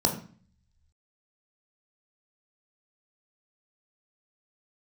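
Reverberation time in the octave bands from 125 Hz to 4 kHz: 1.1, 0.70, 0.40, 0.45, 0.45, 0.40 s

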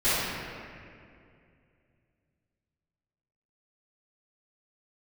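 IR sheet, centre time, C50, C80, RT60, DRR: 0.16 s, -5.0 dB, -1.5 dB, 2.4 s, -18.5 dB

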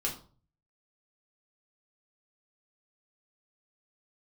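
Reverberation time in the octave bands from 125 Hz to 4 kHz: 0.75, 0.50, 0.45, 0.40, 0.30, 0.30 s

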